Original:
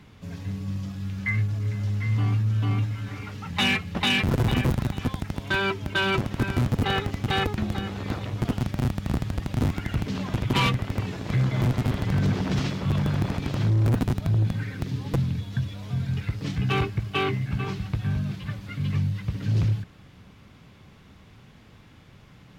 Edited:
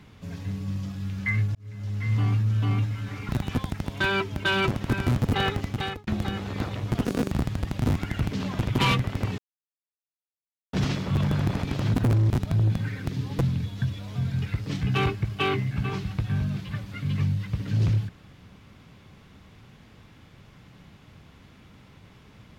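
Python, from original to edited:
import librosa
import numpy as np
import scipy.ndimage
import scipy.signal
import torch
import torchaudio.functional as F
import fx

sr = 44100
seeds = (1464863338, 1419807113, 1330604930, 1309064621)

y = fx.edit(x, sr, fx.fade_in_span(start_s=1.55, length_s=0.58),
    fx.cut(start_s=3.29, length_s=1.5),
    fx.fade_out_span(start_s=7.14, length_s=0.43),
    fx.speed_span(start_s=8.55, length_s=0.51, speed=1.95),
    fx.silence(start_s=11.13, length_s=1.35),
    fx.reverse_span(start_s=13.69, length_s=0.36), tone=tone)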